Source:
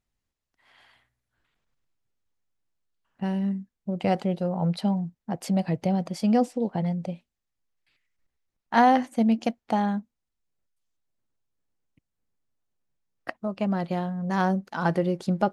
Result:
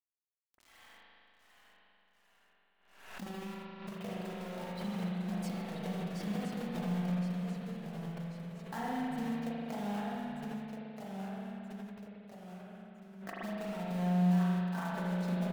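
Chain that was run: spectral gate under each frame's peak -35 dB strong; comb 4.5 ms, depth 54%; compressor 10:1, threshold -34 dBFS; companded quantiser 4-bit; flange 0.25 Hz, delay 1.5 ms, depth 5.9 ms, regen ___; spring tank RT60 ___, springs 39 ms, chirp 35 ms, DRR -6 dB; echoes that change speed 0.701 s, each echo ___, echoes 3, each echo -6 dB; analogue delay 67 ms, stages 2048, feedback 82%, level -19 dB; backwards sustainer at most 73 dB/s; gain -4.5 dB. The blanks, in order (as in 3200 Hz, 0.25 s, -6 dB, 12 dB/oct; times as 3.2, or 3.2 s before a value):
-36%, 2.5 s, -1 st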